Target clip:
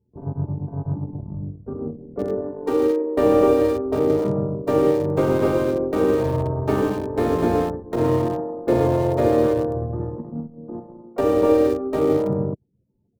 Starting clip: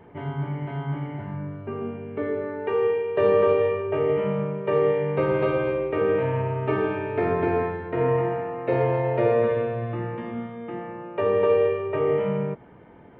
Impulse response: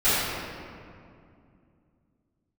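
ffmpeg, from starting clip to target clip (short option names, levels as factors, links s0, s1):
-filter_complex "[0:a]afftfilt=real='re*gte(hypot(re,im),0.0112)':imag='im*gte(hypot(re,im),0.0112)':win_size=1024:overlap=0.75,anlmdn=100,asplit=4[s0][s1][s2][s3];[s1]asetrate=29433,aresample=44100,atempo=1.49831,volume=0.631[s4];[s2]asetrate=35002,aresample=44100,atempo=1.25992,volume=0.126[s5];[s3]asetrate=52444,aresample=44100,atempo=0.840896,volume=0.2[s6];[s0][s4][s5][s6]amix=inputs=4:normalize=0,acrossover=split=170|430|1400[s7][s8][s9][s10];[s10]acrusher=bits=4:dc=4:mix=0:aa=0.000001[s11];[s7][s8][s9][s11]amix=inputs=4:normalize=0,volume=1.26"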